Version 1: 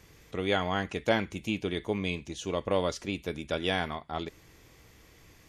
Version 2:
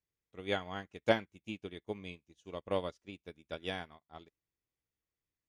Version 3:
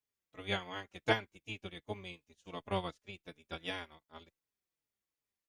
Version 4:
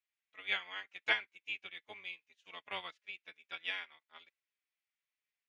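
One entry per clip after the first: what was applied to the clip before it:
band-stop 4.2 kHz, Q 26; upward expansion 2.5:1, over -47 dBFS
spectral peaks clipped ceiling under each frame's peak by 12 dB; endless flanger 4.2 ms -2.7 Hz; trim +1.5 dB
band-pass filter 2.3 kHz, Q 1.9; trim +6 dB

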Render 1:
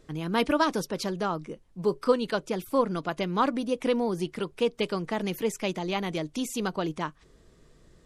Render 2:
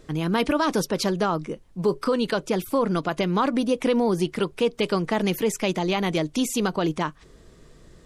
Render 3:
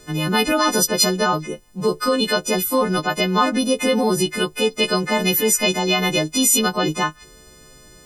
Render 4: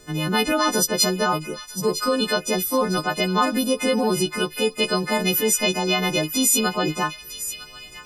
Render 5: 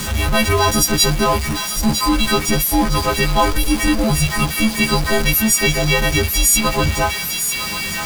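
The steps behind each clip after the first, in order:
peak limiter -20 dBFS, peak gain reduction 10 dB; trim +7 dB
partials quantised in pitch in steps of 3 st; trim +3.5 dB
feedback echo behind a high-pass 955 ms, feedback 41%, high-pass 2.1 kHz, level -10.5 dB; trim -2.5 dB
jump at every zero crossing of -22 dBFS; frequency shift -220 Hz; trim +3 dB

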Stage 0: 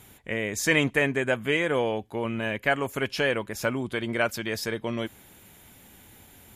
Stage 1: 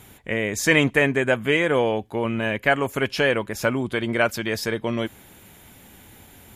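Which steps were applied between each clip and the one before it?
peaking EQ 13 kHz -2.5 dB 2.6 oct; trim +5 dB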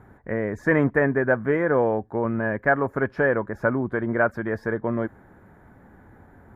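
FFT filter 1.7 kHz 0 dB, 2.8 kHz -29 dB, 4.7 kHz -27 dB, 9.2 kHz -30 dB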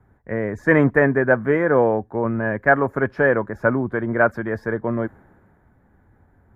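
three bands expanded up and down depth 40%; trim +3.5 dB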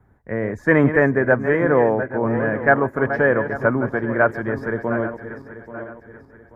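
backward echo that repeats 417 ms, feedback 59%, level -10 dB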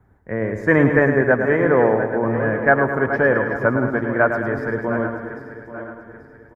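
feedback delay 107 ms, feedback 57%, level -8 dB

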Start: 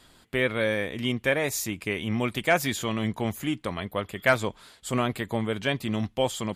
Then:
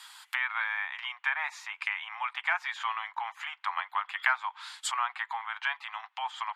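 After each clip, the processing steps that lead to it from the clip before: compression 4:1, threshold -26 dBFS, peak gain reduction 9.5 dB; low-pass that closes with the level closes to 1.6 kHz, closed at -29 dBFS; steep high-pass 830 Hz 72 dB/octave; trim +8.5 dB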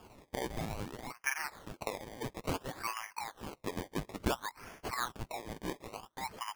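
decimation with a swept rate 22×, swing 100% 0.58 Hz; trim -6 dB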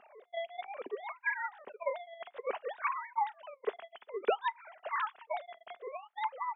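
formants replaced by sine waves; small resonant body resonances 240/390 Hz, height 13 dB, ringing for 40 ms; on a send at -22.5 dB: reverberation, pre-delay 3 ms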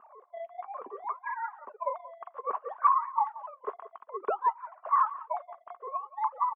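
delay 178 ms -18 dB; flange 0.5 Hz, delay 0.6 ms, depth 8.1 ms, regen -51%; resonant low-pass 1.1 kHz, resonance Q 9.2

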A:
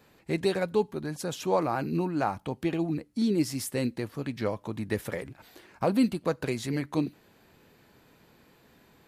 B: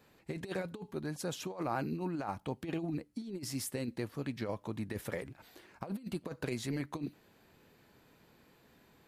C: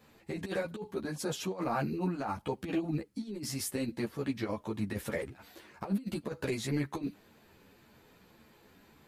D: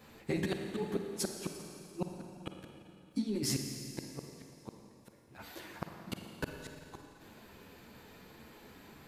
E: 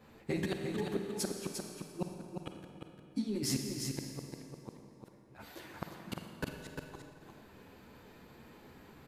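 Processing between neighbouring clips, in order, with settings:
compressor with a negative ratio -29 dBFS, ratio -0.5; trim -7 dB
three-phase chorus; trim +6.5 dB
inverted gate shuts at -27 dBFS, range -40 dB; Schroeder reverb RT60 2.7 s, DRR 4 dB; trim +4.5 dB
delay 350 ms -5.5 dB; tape noise reduction on one side only decoder only; trim -1 dB

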